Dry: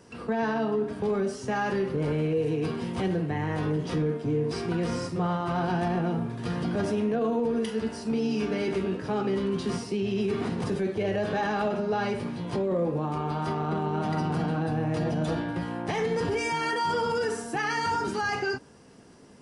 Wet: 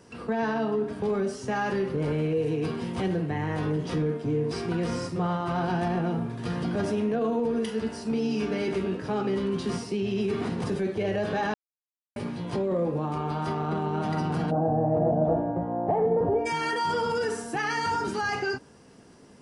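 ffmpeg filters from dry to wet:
-filter_complex "[0:a]asplit=3[a][b][c];[a]afade=t=out:st=14.5:d=0.02[d];[b]lowpass=f=680:t=q:w=3.6,afade=t=in:st=14.5:d=0.02,afade=t=out:st=16.45:d=0.02[e];[c]afade=t=in:st=16.45:d=0.02[f];[d][e][f]amix=inputs=3:normalize=0,asplit=3[g][h][i];[g]atrim=end=11.54,asetpts=PTS-STARTPTS,afade=t=out:st=11.536:d=0.004:c=hsin[j];[h]atrim=start=11.54:end=12.16,asetpts=PTS-STARTPTS,volume=0[k];[i]atrim=start=12.16,asetpts=PTS-STARTPTS,afade=t=in:d=0.004:c=hsin[l];[j][k][l]concat=n=3:v=0:a=1"

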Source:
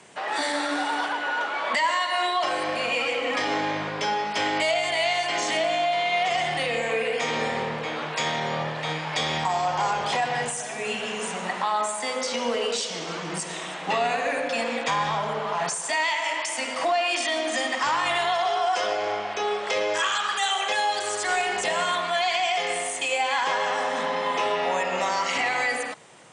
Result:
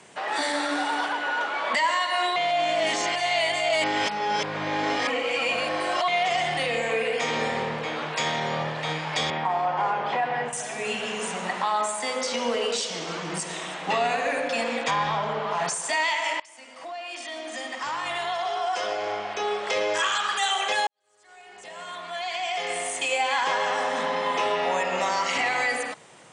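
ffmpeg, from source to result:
-filter_complex "[0:a]asettb=1/sr,asplit=3[a][b][c];[a]atrim=end=9.304[d];[b]atrim=start=9.3:end=10.53,asetpts=PTS-STARTPTS,afade=t=in:d=0.004:c=qsin,afade=t=out:st=1.226:d=0.004:c=qsin,highpass=170,lowpass=2.2k[e];[c]atrim=start=10.526[f];[d][e]acrossfade=d=0.004:c1=hsin:c2=qsin[g];[g][f]acrossfade=d=0.004:c1=qsin:c2=hsin,asettb=1/sr,asplit=3[h][i][j];[h]atrim=end=14.914[k];[i]atrim=start=14.91:end=15.51,asetpts=PTS-STARTPTS,afade=t=in:d=0.004:c=qsin,afade=t=out:st=0.596:d=0.004:c=qsin,lowpass=5.2k[l];[j]atrim=start=15.506[m];[k][l]acrossfade=d=0.004:c1=hsin:c2=qsin[n];[n][m]acrossfade=d=0.004:c1=qsin:c2=hsin,asplit=5[o][p][q][r][s];[o]atrim=end=2.362[t];[p]atrim=start=2.358:end=6.082,asetpts=PTS-STARTPTS,areverse[u];[q]atrim=start=6.078:end=16.4,asetpts=PTS-STARTPTS,afade=t=out:st=10.318:d=0.004:c=hsin:silence=0.0749894[v];[r]atrim=start=16.4:end=20.87,asetpts=PTS-STARTPTS,afade=t=in:d=3.48:silence=0.0749894,afade=t=out:st=4.466:d=0.004:c=hsin[w];[s]atrim=start=20.87,asetpts=PTS-STARTPTS,afade=t=in:d=2.1:c=qua[x];[t][u]acrossfade=d=0.004:c1=hsin:c2=hsin[y];[v][w][x]concat=n=3:v=0:a=1[z];[y][z]acrossfade=d=0.004:c1=hsin:c2=hsin"

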